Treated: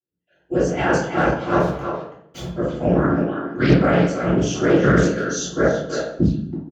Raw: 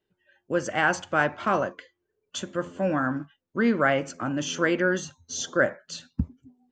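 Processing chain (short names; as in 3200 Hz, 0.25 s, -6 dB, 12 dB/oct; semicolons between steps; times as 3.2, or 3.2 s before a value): 3.09–3.8 weighting filter D; gate with hold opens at -58 dBFS; bell 67 Hz +11 dB 1.6 oct; notch 1800 Hz, Q 7; 1.6–2.56 Schmitt trigger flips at -32.5 dBFS; 4.82–5.44 comb 4.8 ms, depth 90%; whisperiser; speakerphone echo 0.33 s, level -6 dB; reverb RT60 0.70 s, pre-delay 3 ms, DRR -10 dB; Doppler distortion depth 0.37 ms; gain -13 dB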